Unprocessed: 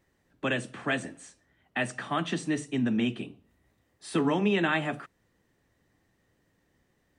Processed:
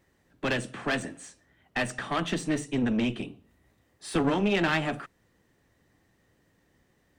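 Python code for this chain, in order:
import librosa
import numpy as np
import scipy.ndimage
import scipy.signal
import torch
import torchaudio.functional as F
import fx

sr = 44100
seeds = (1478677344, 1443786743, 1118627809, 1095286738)

y = fx.diode_clip(x, sr, knee_db=-31.0)
y = F.gain(torch.from_numpy(y), 3.5).numpy()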